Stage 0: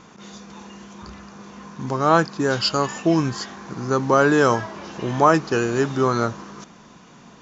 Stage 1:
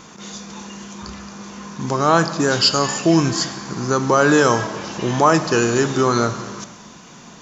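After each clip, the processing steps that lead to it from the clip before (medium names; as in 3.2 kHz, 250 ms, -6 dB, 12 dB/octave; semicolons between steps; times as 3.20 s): treble shelf 5 kHz +11.5 dB; in parallel at +2.5 dB: peak limiter -11 dBFS, peak gain reduction 9 dB; on the sum: gated-style reverb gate 490 ms falling, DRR 10.5 dB; trim -3.5 dB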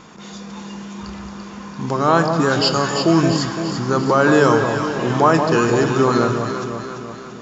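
treble shelf 5.1 kHz -8.5 dB; band-stop 6.1 kHz, Q 12; on a send: echo whose repeats swap between lows and highs 170 ms, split 1 kHz, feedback 73%, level -4.5 dB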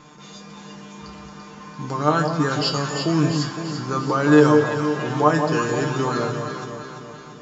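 feedback comb 150 Hz, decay 0.17 s, harmonics all, mix 90%; trim +3.5 dB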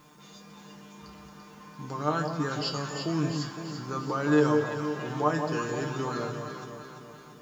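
added noise white -60 dBFS; trim -9 dB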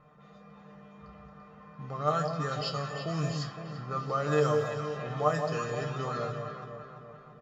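level-controlled noise filter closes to 1.5 kHz, open at -21.5 dBFS; comb 1.6 ms, depth 72%; trim -2.5 dB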